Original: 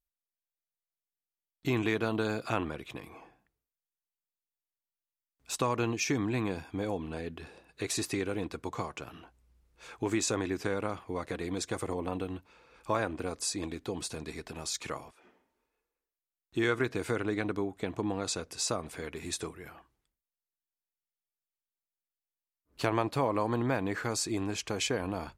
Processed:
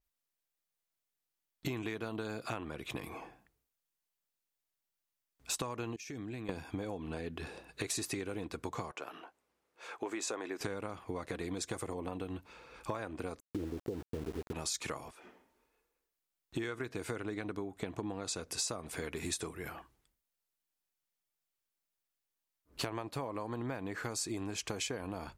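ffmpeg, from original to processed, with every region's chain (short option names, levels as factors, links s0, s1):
-filter_complex "[0:a]asettb=1/sr,asplit=3[s0][s1][s2];[s0]atrim=end=5.964[s3];[s1]atrim=start=5.96:end=6.49,asetpts=PTS-STARTPTS,afade=t=in:d=0.004:c=qsin,afade=t=out:st=0.526:d=0.004:c=qsin,agate=range=0.0224:threshold=0.0282:ratio=3:release=100:detection=peak,equalizer=f=1000:t=o:w=0.6:g=-9,acompressor=threshold=0.00708:ratio=10:attack=3.2:release=140:knee=1:detection=peak[s4];[s2]atrim=start=6.486[s5];[s3][s4]acrossfade=d=0.004:c1=hsin:c2=qsin[s6];[s6][s5]acrossfade=d=0.004:c1=qsin:c2=hsin,asettb=1/sr,asplit=3[s7][s8][s9];[s7]atrim=end=8.914[s10];[s8]atrim=start=8.91:end=10.61,asetpts=PTS-STARTPTS,afade=t=in:d=0.004:c=qsin,afade=t=out:st=1.696:d=0.004:c=qsin,highpass=450,highshelf=f=2800:g=-9.5[s11];[s9]atrim=start=10.606[s12];[s10][s11]acrossfade=d=0.004:c1=hsin:c2=qsin[s13];[s13][s12]acrossfade=d=0.004:c1=qsin:c2=hsin,asettb=1/sr,asplit=3[s14][s15][s16];[s14]atrim=end=13.404[s17];[s15]atrim=start=13.4:end=14.53,asetpts=PTS-STARTPTS,afade=t=in:d=0.004:c=qsin,afade=t=out:st=1.126:d=0.004:c=qsin,lowpass=f=450:t=q:w=1.7,equalizer=f=80:t=o:w=0.65:g=7,aeval=exprs='val(0)*gte(abs(val(0)),0.00794)':c=same[s18];[s16]atrim=start=14.526[s19];[s17][s18]acrossfade=d=0.004:c1=hsin:c2=qsin[s20];[s20][s19]acrossfade=d=0.004:c1=qsin:c2=hsin,acompressor=threshold=0.01:ratio=10,adynamicequalizer=threshold=0.00141:dfrequency=5900:dqfactor=0.7:tfrequency=5900:tqfactor=0.7:attack=5:release=100:ratio=0.375:range=2:mode=boostabove:tftype=highshelf,volume=1.78"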